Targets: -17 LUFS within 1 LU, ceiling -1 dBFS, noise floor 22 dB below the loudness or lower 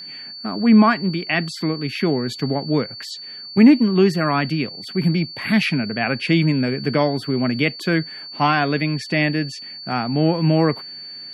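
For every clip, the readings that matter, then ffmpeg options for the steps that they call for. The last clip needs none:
steady tone 4.5 kHz; tone level -33 dBFS; loudness -19.5 LUFS; peak level -2.0 dBFS; loudness target -17.0 LUFS
-> -af "bandreject=f=4500:w=30"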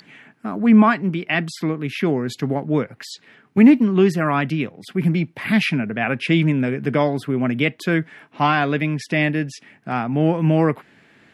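steady tone not found; loudness -19.5 LUFS; peak level -2.5 dBFS; loudness target -17.0 LUFS
-> -af "volume=1.33,alimiter=limit=0.891:level=0:latency=1"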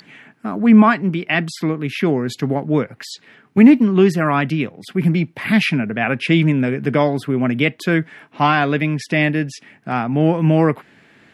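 loudness -17.0 LUFS; peak level -1.0 dBFS; noise floor -52 dBFS

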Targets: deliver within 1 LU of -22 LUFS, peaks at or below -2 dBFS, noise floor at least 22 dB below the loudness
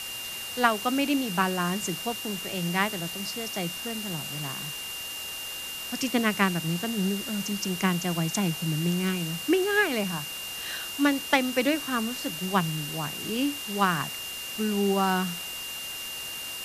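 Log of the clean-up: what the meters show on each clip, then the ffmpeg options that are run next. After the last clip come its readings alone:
steady tone 2.8 kHz; tone level -36 dBFS; noise floor -36 dBFS; noise floor target -50 dBFS; loudness -28.0 LUFS; peak level -7.0 dBFS; loudness target -22.0 LUFS
-> -af "bandreject=f=2800:w=30"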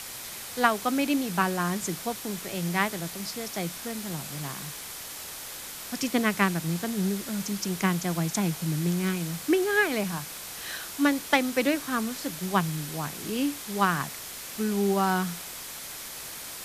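steady tone not found; noise floor -40 dBFS; noise floor target -51 dBFS
-> -af "afftdn=nr=11:nf=-40"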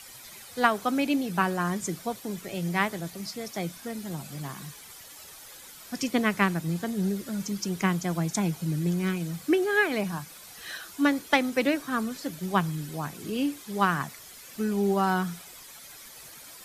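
noise floor -47 dBFS; noise floor target -51 dBFS
-> -af "afftdn=nr=6:nf=-47"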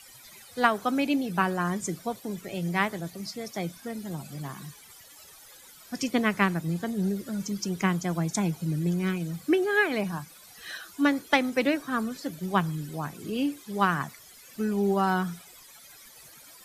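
noise floor -51 dBFS; loudness -28.5 LUFS; peak level -7.0 dBFS; loudness target -22.0 LUFS
-> -af "volume=2.11,alimiter=limit=0.794:level=0:latency=1"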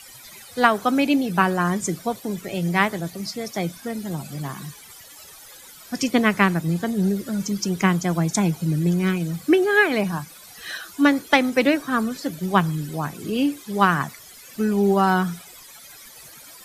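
loudness -22.0 LUFS; peak level -2.0 dBFS; noise floor -45 dBFS

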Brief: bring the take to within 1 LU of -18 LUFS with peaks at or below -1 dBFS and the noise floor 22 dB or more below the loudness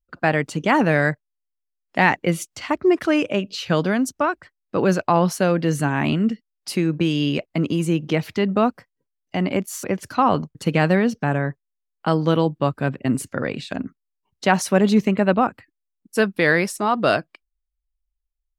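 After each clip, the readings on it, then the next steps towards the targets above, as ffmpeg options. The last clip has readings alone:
loudness -21.0 LUFS; peak level -1.5 dBFS; loudness target -18.0 LUFS
-> -af "volume=1.41,alimiter=limit=0.891:level=0:latency=1"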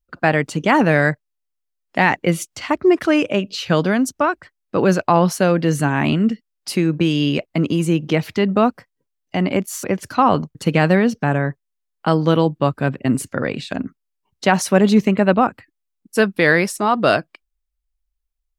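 loudness -18.5 LUFS; peak level -1.0 dBFS; noise floor -77 dBFS

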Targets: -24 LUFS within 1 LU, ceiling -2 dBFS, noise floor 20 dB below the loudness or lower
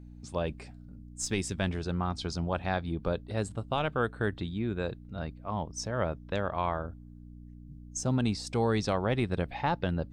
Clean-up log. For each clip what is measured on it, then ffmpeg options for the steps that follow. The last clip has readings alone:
hum 60 Hz; highest harmonic 300 Hz; hum level -45 dBFS; loudness -32.5 LUFS; peak level -16.0 dBFS; loudness target -24.0 LUFS
-> -af "bandreject=f=60:t=h:w=4,bandreject=f=120:t=h:w=4,bandreject=f=180:t=h:w=4,bandreject=f=240:t=h:w=4,bandreject=f=300:t=h:w=4"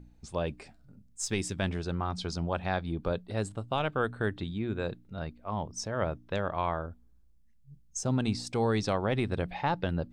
hum not found; loudness -32.5 LUFS; peak level -16.0 dBFS; loudness target -24.0 LUFS
-> -af "volume=2.66"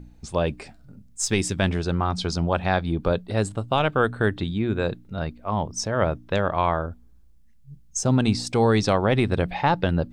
loudness -24.0 LUFS; peak level -7.5 dBFS; noise floor -51 dBFS

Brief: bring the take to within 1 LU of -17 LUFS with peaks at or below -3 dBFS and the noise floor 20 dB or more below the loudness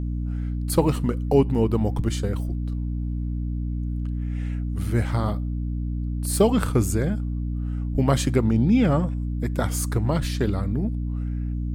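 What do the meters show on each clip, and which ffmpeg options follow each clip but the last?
hum 60 Hz; highest harmonic 300 Hz; hum level -24 dBFS; loudness -24.5 LUFS; peak level -5.5 dBFS; loudness target -17.0 LUFS
-> -af "bandreject=f=60:t=h:w=6,bandreject=f=120:t=h:w=6,bandreject=f=180:t=h:w=6,bandreject=f=240:t=h:w=6,bandreject=f=300:t=h:w=6"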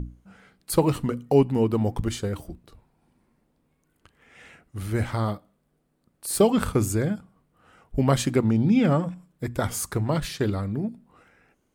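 hum not found; loudness -25.0 LUFS; peak level -7.0 dBFS; loudness target -17.0 LUFS
-> -af "volume=2.51,alimiter=limit=0.708:level=0:latency=1"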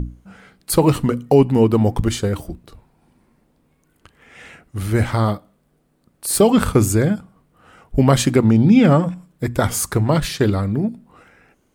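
loudness -17.5 LUFS; peak level -3.0 dBFS; noise floor -63 dBFS

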